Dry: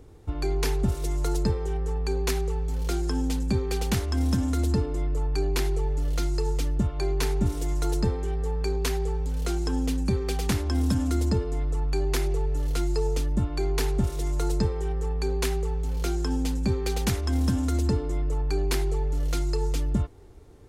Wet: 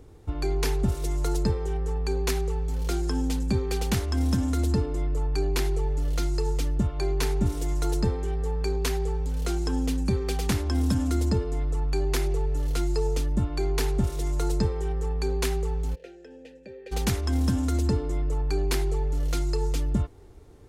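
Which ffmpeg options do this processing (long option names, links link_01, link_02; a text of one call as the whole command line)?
ffmpeg -i in.wav -filter_complex "[0:a]asplit=3[link_01][link_02][link_03];[link_01]afade=type=out:start_time=15.94:duration=0.02[link_04];[link_02]asplit=3[link_05][link_06][link_07];[link_05]bandpass=frequency=530:width_type=q:width=8,volume=0dB[link_08];[link_06]bandpass=frequency=1840:width_type=q:width=8,volume=-6dB[link_09];[link_07]bandpass=frequency=2480:width_type=q:width=8,volume=-9dB[link_10];[link_08][link_09][link_10]amix=inputs=3:normalize=0,afade=type=in:start_time=15.94:duration=0.02,afade=type=out:start_time=16.91:duration=0.02[link_11];[link_03]afade=type=in:start_time=16.91:duration=0.02[link_12];[link_04][link_11][link_12]amix=inputs=3:normalize=0" out.wav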